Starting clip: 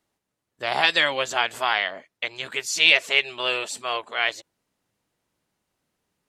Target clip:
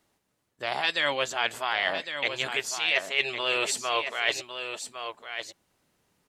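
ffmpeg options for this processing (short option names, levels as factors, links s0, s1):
-af "areverse,acompressor=threshold=0.0355:ratio=6,areverse,aecho=1:1:1107:0.376,volume=1.88"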